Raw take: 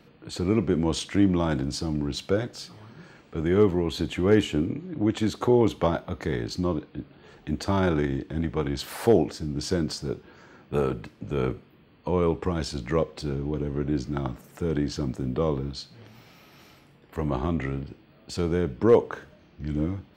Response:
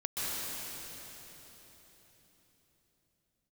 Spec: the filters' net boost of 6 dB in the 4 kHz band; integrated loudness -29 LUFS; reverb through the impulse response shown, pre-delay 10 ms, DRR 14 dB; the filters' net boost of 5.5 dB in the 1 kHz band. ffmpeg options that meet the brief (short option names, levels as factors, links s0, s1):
-filter_complex "[0:a]equalizer=f=1000:t=o:g=6.5,equalizer=f=4000:t=o:g=7,asplit=2[s0][s1];[1:a]atrim=start_sample=2205,adelay=10[s2];[s1][s2]afir=irnorm=-1:irlink=0,volume=0.0891[s3];[s0][s3]amix=inputs=2:normalize=0,volume=0.668"